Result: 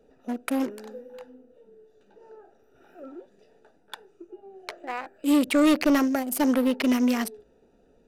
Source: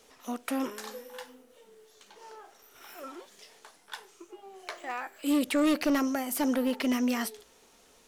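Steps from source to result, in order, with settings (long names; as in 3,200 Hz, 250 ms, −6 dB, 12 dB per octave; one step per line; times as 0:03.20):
adaptive Wiener filter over 41 samples
level +6 dB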